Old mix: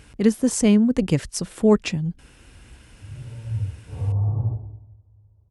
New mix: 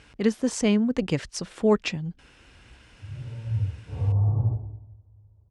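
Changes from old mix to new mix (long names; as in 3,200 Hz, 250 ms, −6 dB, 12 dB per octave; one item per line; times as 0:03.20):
speech: add low-shelf EQ 350 Hz −8 dB
master: add low-pass filter 5,500 Hz 12 dB per octave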